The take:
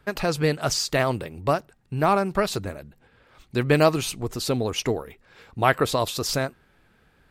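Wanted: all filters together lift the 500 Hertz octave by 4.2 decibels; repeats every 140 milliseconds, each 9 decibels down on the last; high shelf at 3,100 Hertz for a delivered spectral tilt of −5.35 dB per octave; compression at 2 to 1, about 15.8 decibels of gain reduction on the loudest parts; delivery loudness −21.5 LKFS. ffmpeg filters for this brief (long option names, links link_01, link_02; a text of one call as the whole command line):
ffmpeg -i in.wav -af "equalizer=frequency=500:width_type=o:gain=5.5,highshelf=frequency=3100:gain=-6.5,acompressor=threshold=-41dB:ratio=2,aecho=1:1:140|280|420|560:0.355|0.124|0.0435|0.0152,volume=14dB" out.wav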